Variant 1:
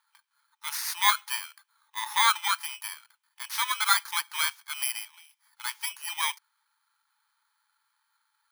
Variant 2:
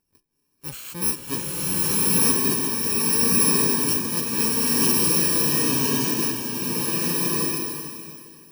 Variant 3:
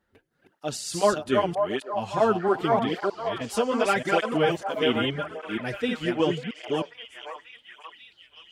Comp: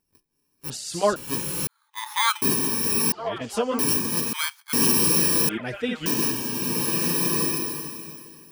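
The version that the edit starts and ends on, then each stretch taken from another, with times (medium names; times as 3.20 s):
2
0.70–1.16 s: from 3
1.67–2.42 s: from 1
3.12–3.79 s: from 3
4.33–4.73 s: from 1
5.49–6.06 s: from 3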